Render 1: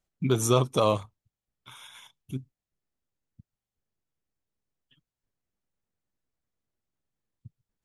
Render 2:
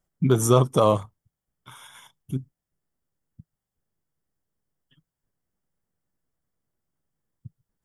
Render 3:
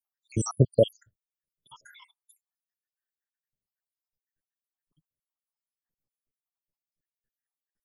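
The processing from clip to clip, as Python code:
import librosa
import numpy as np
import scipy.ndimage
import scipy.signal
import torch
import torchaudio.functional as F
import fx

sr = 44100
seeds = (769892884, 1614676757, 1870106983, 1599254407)

y1 = fx.graphic_eq_31(x, sr, hz=(160, 2500, 4000, 6300), db=(5, -10, -11, -4))
y1 = y1 * librosa.db_to_amplitude(4.5)
y2 = fx.spec_dropout(y1, sr, seeds[0], share_pct=85)
y2 = fx.noise_reduce_blind(y2, sr, reduce_db=11)
y2 = y2 * librosa.db_to_amplitude(3.0)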